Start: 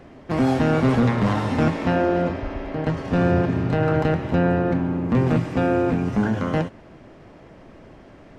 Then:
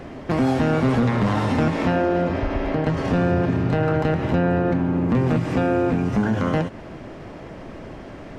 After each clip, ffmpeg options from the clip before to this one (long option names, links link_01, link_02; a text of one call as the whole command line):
ffmpeg -i in.wav -filter_complex "[0:a]asplit=2[link_01][link_02];[link_02]alimiter=limit=-20dB:level=0:latency=1:release=109,volume=2dB[link_03];[link_01][link_03]amix=inputs=2:normalize=0,acompressor=threshold=-22dB:ratio=2,volume=1.5dB" out.wav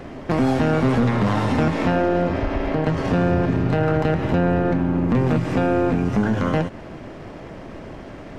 ffmpeg -i in.wav -af "aeval=exprs='if(lt(val(0),0),0.708*val(0),val(0))':channel_layout=same,volume=2dB" out.wav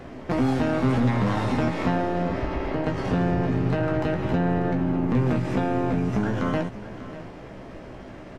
ffmpeg -i in.wav -filter_complex "[0:a]asplit=2[link_01][link_02];[link_02]adelay=16,volume=-6dB[link_03];[link_01][link_03]amix=inputs=2:normalize=0,aecho=1:1:592:0.178,volume=-5dB" out.wav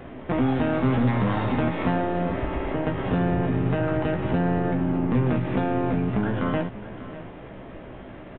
ffmpeg -i in.wav -af "aresample=8000,aresample=44100" out.wav